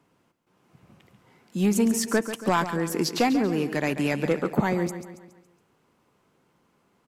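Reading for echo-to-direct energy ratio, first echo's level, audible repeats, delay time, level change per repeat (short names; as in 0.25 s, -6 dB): -10.0 dB, -11.0 dB, 4, 0.139 s, -6.5 dB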